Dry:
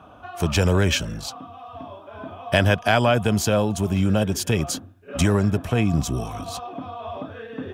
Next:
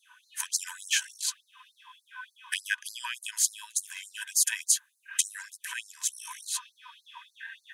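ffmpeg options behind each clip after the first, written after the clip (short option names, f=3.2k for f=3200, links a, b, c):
-af "acompressor=threshold=-21dB:ratio=6,superequalizer=10b=0.251:11b=2:15b=2.24:16b=3.16,afftfilt=real='re*gte(b*sr/1024,880*pow(4100/880,0.5+0.5*sin(2*PI*3.4*pts/sr)))':imag='im*gte(b*sr/1024,880*pow(4100/880,0.5+0.5*sin(2*PI*3.4*pts/sr)))':win_size=1024:overlap=0.75"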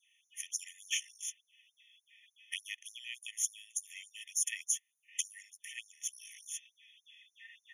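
-af "afftfilt=real='re*eq(mod(floor(b*sr/1024/1800),2),1)':imag='im*eq(mod(floor(b*sr/1024/1800),2),1)':win_size=1024:overlap=0.75,volume=-6.5dB"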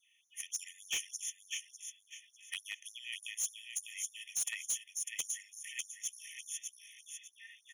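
-af "aecho=1:1:600|1200|1800:0.501|0.135|0.0365,asoftclip=type=hard:threshold=-29.5dB"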